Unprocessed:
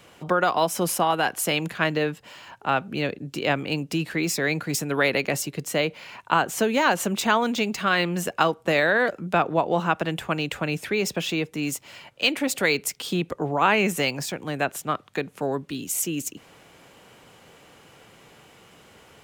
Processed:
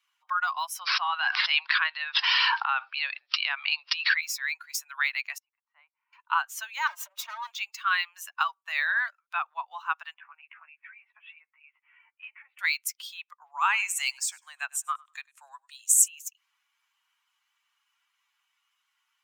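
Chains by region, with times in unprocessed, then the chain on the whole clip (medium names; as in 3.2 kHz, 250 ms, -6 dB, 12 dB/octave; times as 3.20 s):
0.79–4.21 s: careless resampling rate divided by 4×, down none, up filtered + level flattener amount 100%
5.38–6.13 s: ladder band-pass 1 kHz, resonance 45% + distance through air 130 m
6.87–7.51 s: comb filter that takes the minimum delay 3.2 ms + small resonant body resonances 200/580 Hz, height 17 dB, ringing for 55 ms + compression 16:1, threshold -19 dBFS
10.14–12.59 s: steep low-pass 2.5 kHz + compression 12:1, threshold -32 dBFS + doubling 13 ms -2.5 dB
13.52–16.08 s: peaking EQ 8 kHz +12.5 dB 0.58 oct + feedback delay 99 ms, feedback 29%, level -17 dB
whole clip: expander on every frequency bin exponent 1.5; steep high-pass 960 Hz 48 dB/octave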